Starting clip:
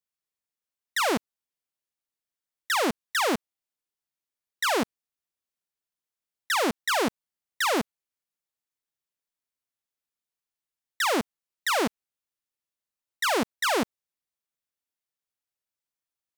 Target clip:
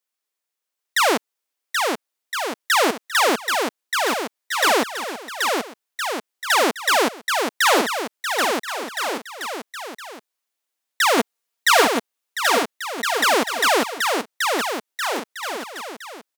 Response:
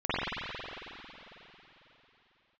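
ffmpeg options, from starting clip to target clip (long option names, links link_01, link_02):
-filter_complex "[0:a]highpass=340,asettb=1/sr,asplit=3[link_01][link_02][link_03];[link_01]atrim=end=11.174[link_04];[link_02]atrim=start=11.17:end=11.85,asetpts=PTS-STARTPTS,afade=type=in:duration=0.004:curve=qsin,afade=type=out:start_time=0.676:duration=0.004:curve=qsin,aecho=1:1:4.3:0.95,atrim=end_sample=29988[link_05];[link_03]atrim=start=11.846[link_06];[link_04][link_05]acrossfade=duration=0.004:curve1=hsin:curve2=qsin[link_07];[link_07][link_06]acrossfade=duration=0.004:curve1=qsin:curve2=hsin,aecho=1:1:780|1365|1804|2133|2380:0.631|0.398|0.251|0.158|0.1,volume=7.5dB"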